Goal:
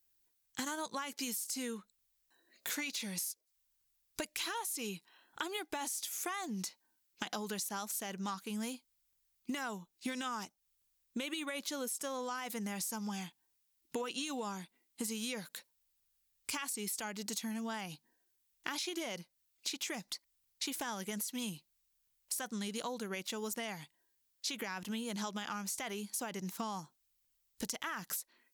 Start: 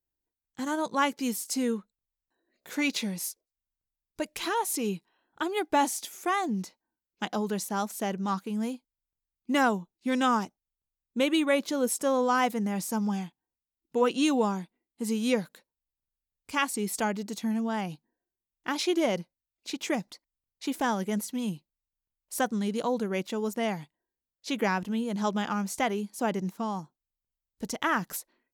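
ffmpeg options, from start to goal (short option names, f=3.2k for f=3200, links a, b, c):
-filter_complex "[0:a]highshelf=f=2.8k:g=8.5,acrossover=split=960[a][b];[b]acontrast=68[c];[a][c]amix=inputs=2:normalize=0,alimiter=limit=-15dB:level=0:latency=1:release=33,acompressor=threshold=-36dB:ratio=12"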